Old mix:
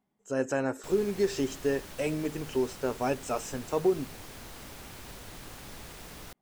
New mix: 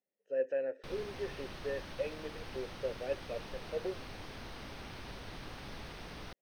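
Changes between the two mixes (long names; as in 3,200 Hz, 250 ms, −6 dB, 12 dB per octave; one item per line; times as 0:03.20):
speech: add formant filter e
master: add Savitzky-Golay smoothing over 15 samples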